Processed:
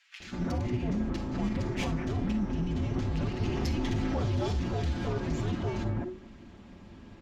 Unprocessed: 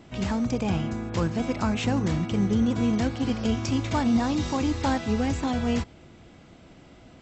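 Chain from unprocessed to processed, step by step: comb filter that takes the minimum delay 6.5 ms; low-pass 2.6 kHz 6 dB/octave; peak limiter -26 dBFS, peak gain reduction 11.5 dB; frequency shift -370 Hz; bands offset in time highs, lows 200 ms, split 1.7 kHz; reverberation, pre-delay 43 ms, DRR 11.5 dB; 3.40–4.36 s: level flattener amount 50%; trim +3 dB

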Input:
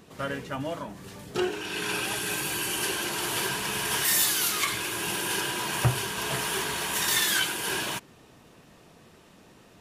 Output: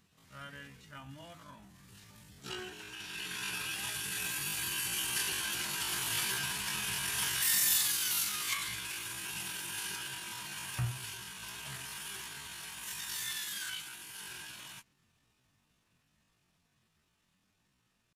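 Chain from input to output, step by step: Doppler pass-by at 3.21 s, 5 m/s, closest 6.5 m; peaking EQ 460 Hz -14.5 dB 2 oct; tempo 0.54×; trim -2.5 dB

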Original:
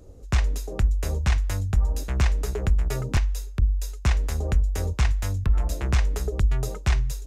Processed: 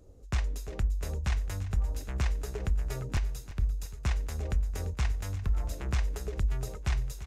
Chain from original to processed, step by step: feedback delay 343 ms, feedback 60%, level -15 dB; trim -8 dB

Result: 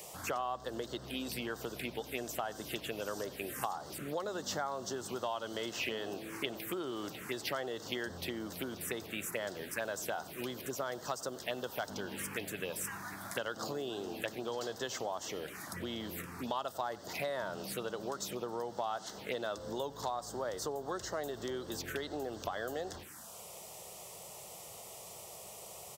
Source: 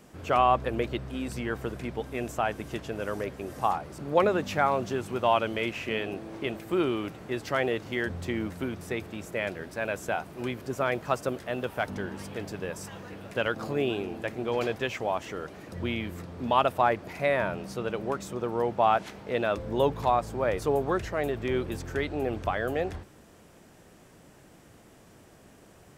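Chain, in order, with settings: touch-sensitive phaser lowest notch 230 Hz, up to 2.4 kHz, full sweep at -28.5 dBFS; echo from a far wall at 16 m, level -23 dB; compression, threshold -33 dBFS, peak gain reduction 14.5 dB; tilt EQ +3.5 dB/octave; three bands compressed up and down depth 40%; trim +1.5 dB

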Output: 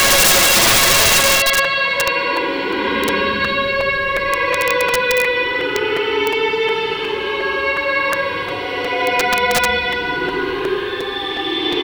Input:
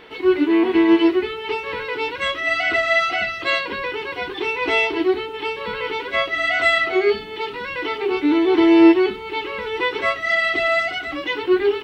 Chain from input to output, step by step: Paulstretch 13×, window 0.10 s, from 3.49 s; early reflections 60 ms -12.5 dB, 71 ms -11 dB; integer overflow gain 15 dB; crackling interface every 0.36 s, samples 256, repeat, from 0.92 s; trim +8.5 dB

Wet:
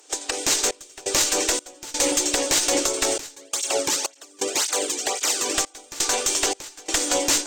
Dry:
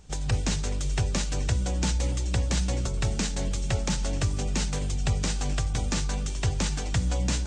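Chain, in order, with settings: steep high-pass 280 Hz 96 dB/octave; treble shelf 6.5 kHz +12 dB; level rider gain up to 12 dB; valve stage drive 11 dB, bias 0.65; trance gate "xxxx..xxx..xxx" 85 bpm -24 dB; loudness maximiser +15 dB; 3.36–5.55 s: cancelling through-zero flanger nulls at 1.9 Hz, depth 1.6 ms; trim -7 dB

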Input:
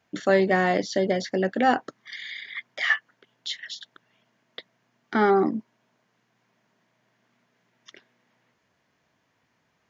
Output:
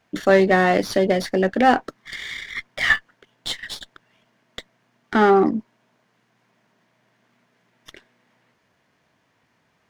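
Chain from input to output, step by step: sliding maximum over 3 samples; trim +5 dB

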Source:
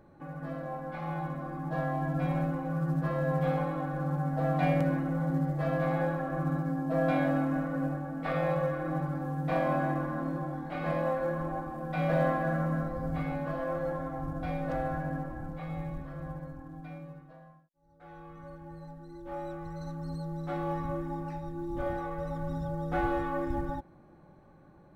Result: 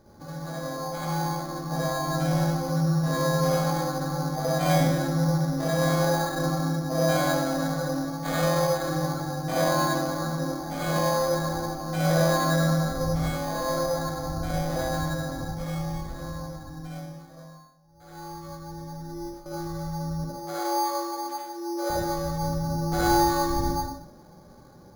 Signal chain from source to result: 18.92–19.46 s: compressor with a negative ratio -45 dBFS, ratio -0.5; 20.24–21.90 s: steep high-pass 340 Hz 36 dB/octave; reverberation RT60 0.60 s, pre-delay 48 ms, DRR -5.5 dB; careless resampling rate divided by 8×, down filtered, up hold

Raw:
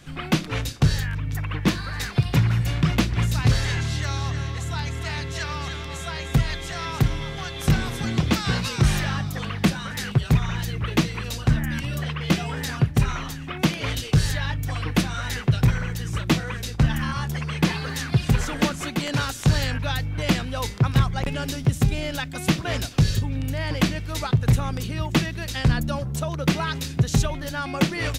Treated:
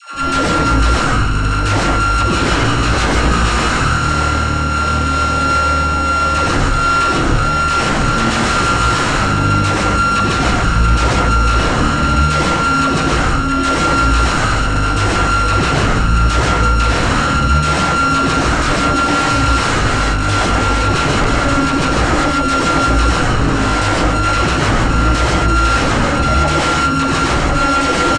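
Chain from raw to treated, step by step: sorted samples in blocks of 32 samples; comb 3.5 ms, depth 65%; phase dispersion lows, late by 149 ms, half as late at 490 Hz; sine folder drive 16 dB, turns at -8.5 dBFS; steep low-pass 8.6 kHz 36 dB/octave; treble shelf 3.8 kHz -9 dB; gated-style reverb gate 170 ms rising, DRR -1.5 dB; trim -5 dB

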